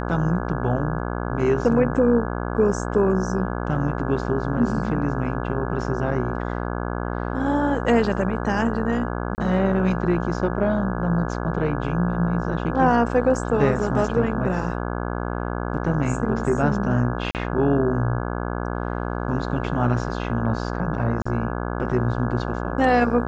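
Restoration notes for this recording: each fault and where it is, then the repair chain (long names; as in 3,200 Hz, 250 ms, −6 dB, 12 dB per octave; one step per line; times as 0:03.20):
mains buzz 60 Hz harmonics 28 −27 dBFS
0:09.35–0:09.38: drop-out 29 ms
0:17.31–0:17.35: drop-out 38 ms
0:21.22–0:21.25: drop-out 35 ms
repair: hum removal 60 Hz, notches 28
repair the gap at 0:09.35, 29 ms
repair the gap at 0:17.31, 38 ms
repair the gap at 0:21.22, 35 ms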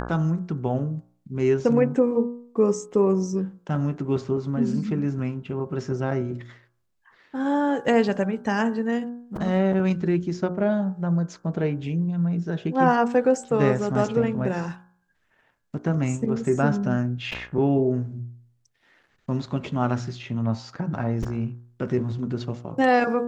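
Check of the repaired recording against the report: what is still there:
none of them is left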